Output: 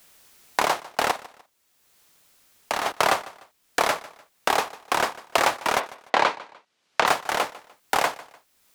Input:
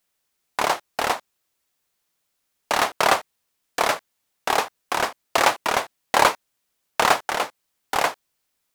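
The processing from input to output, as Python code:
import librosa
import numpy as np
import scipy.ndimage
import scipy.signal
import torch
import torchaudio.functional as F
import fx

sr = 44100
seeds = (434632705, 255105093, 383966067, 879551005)

y = fx.level_steps(x, sr, step_db=16, at=(1.11, 2.86))
y = fx.bandpass_edges(y, sr, low_hz=180.0, high_hz=fx.line((5.79, 3300.0), (7.05, 4800.0)), at=(5.79, 7.05), fade=0.02)
y = fx.echo_feedback(y, sr, ms=149, feedback_pct=22, wet_db=-22.0)
y = fx.band_squash(y, sr, depth_pct=70)
y = F.gain(torch.from_numpy(y), -1.0).numpy()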